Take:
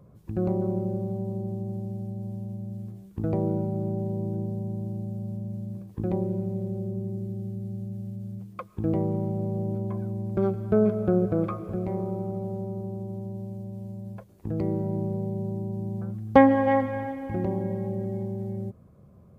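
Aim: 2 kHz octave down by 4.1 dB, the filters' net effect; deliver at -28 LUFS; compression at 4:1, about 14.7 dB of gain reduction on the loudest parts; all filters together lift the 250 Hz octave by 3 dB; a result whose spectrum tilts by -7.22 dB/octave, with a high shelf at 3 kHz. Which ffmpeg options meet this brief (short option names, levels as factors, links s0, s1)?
-af "equalizer=f=250:t=o:g=4,equalizer=f=2000:t=o:g=-6.5,highshelf=f=3000:g=5,acompressor=threshold=0.0501:ratio=4,volume=1.58"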